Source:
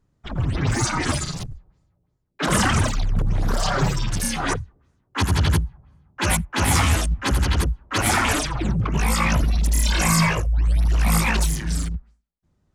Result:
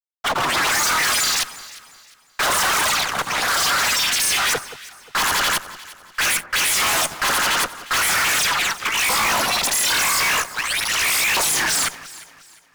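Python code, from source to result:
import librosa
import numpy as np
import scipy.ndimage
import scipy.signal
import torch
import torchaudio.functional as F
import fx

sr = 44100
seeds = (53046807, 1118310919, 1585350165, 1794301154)

y = fx.filter_lfo_highpass(x, sr, shape='saw_up', hz=0.44, low_hz=750.0, high_hz=2500.0, q=1.1)
y = fx.fuzz(y, sr, gain_db=45.0, gate_db=-55.0)
y = fx.echo_alternate(y, sr, ms=177, hz=1500.0, feedback_pct=57, wet_db=-13.5)
y = y * 10.0 ** (-5.0 / 20.0)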